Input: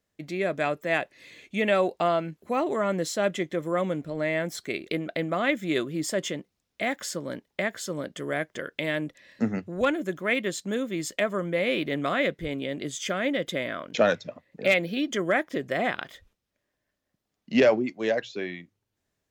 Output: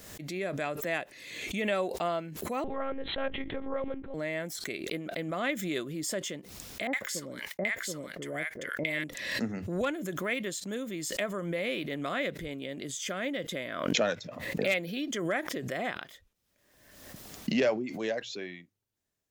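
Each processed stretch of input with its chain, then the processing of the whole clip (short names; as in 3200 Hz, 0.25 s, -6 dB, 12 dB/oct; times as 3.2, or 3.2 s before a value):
2.64–4.14 LPF 2700 Hz + monotone LPC vocoder at 8 kHz 270 Hz
6.87–9.04 expander -57 dBFS + bell 2100 Hz +9.5 dB 0.29 oct + bands offset in time lows, highs 60 ms, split 890 Hz
whole clip: high shelf 5700 Hz +8.5 dB; backwards sustainer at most 47 dB/s; gain -7.5 dB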